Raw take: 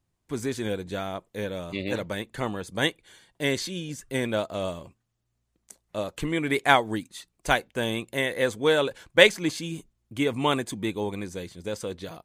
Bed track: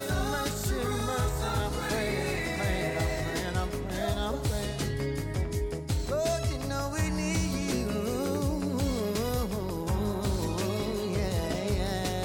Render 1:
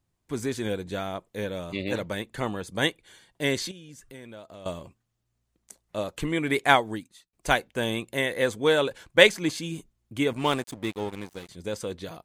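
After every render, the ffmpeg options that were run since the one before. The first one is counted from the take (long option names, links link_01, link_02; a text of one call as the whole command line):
ffmpeg -i in.wav -filter_complex "[0:a]asettb=1/sr,asplit=3[link_01][link_02][link_03];[link_01]atrim=end=3.714[link_04];[link_02]atrim=start=3.71:end=4.66,asetpts=PTS-STARTPTS,afade=type=in:duration=0.004:curve=qsin,afade=type=out:start_time=0.946:duration=0.004:curve=qsin,acompressor=threshold=-46dB:ratio=3:attack=3.2:release=140:knee=1:detection=peak[link_05];[link_03]atrim=start=4.656[link_06];[link_04][link_05]acrossfade=duration=0.004:curve1=hsin:curve2=qsin[link_07];[link_07][link_06]acrossfade=duration=0.004:curve1=qsin:curve2=hsin,asettb=1/sr,asplit=3[link_08][link_09][link_10];[link_08]atrim=end=10.334[link_11];[link_09]atrim=start=10.33:end=11.49,asetpts=PTS-STARTPTS,afade=type=in:duration=0.004:curve=qsin,afade=type=out:start_time=1.156:duration=0.004:curve=qsin,aeval=exprs='sgn(val(0))*max(abs(val(0))-0.0126,0)':channel_layout=same[link_12];[link_10]atrim=start=11.486[link_13];[link_11][link_12]acrossfade=duration=0.004:curve1=hsin:curve2=qsin[link_14];[link_14][link_13]acrossfade=duration=0.004:curve1=qsin:curve2=hsin,asplit=2[link_15][link_16];[link_15]atrim=end=7.33,asetpts=PTS-STARTPTS,afade=type=out:start_time=6.74:duration=0.59[link_17];[link_16]atrim=start=7.33,asetpts=PTS-STARTPTS,afade=type=in:duration=0.004:curve=hsin[link_18];[link_17][link_18]concat=n=2:v=0:a=1" out.wav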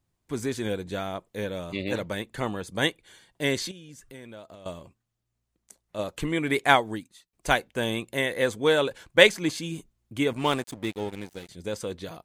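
ffmpeg -i in.wav -filter_complex "[0:a]asettb=1/sr,asplit=3[link_01][link_02][link_03];[link_01]atrim=end=10.854[link_04];[link_02]atrim=start=10.85:end=11.64,asetpts=PTS-STARTPTS,afade=type=in:duration=0.004:curve=qsin,afade=type=out:start_time=0.786:duration=0.004:curve=qsin,equalizer=frequency=1100:width=4:gain=-8.5[link_05];[link_03]atrim=start=11.636[link_06];[link_04][link_05]acrossfade=duration=0.004:curve1=hsin:curve2=qsin[link_07];[link_07][link_06]acrossfade=duration=0.004:curve1=qsin:curve2=hsin,asplit=3[link_08][link_09][link_10];[link_08]atrim=end=4.552[link_11];[link_09]atrim=start=4.548:end=5.992,asetpts=PTS-STARTPTS,volume=-3.5dB[link_12];[link_10]atrim=start=5.988[link_13];[link_11][link_12]acrossfade=duration=0.004:curve1=hsin:curve2=hsin[link_14];[link_14][link_13]acrossfade=duration=0.004:curve1=hsin:curve2=hsin" out.wav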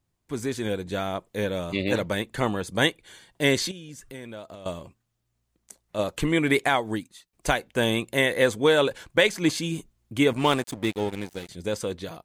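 ffmpeg -i in.wav -af "alimiter=limit=-13dB:level=0:latency=1:release=186,dynaudnorm=framelen=370:gausssize=5:maxgain=4.5dB" out.wav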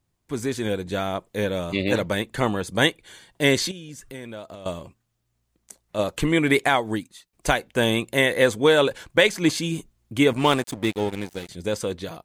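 ffmpeg -i in.wav -af "volume=2.5dB" out.wav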